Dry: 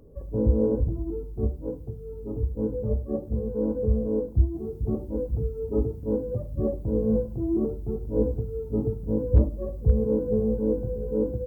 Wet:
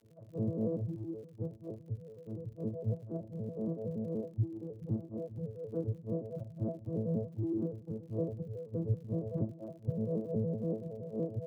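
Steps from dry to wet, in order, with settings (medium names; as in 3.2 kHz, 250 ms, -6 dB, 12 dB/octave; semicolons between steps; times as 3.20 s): vocoder on a broken chord bare fifth, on A2, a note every 94 ms; crackle 67 per s -47 dBFS; trim -8 dB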